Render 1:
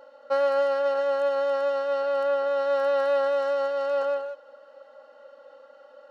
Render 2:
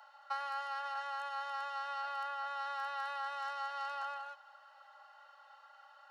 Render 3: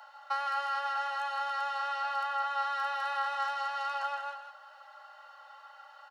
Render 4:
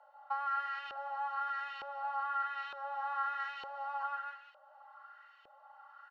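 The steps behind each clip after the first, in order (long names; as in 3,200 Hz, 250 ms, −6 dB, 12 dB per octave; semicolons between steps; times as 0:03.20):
downward compressor, threshold −27 dBFS, peak gain reduction 8 dB; Butterworth high-pass 710 Hz 72 dB per octave; level −1 dB
double-tracking delay 13 ms −12 dB; single-tap delay 161 ms −6.5 dB; level +5.5 dB
auto-filter band-pass saw up 1.1 Hz 480–2,800 Hz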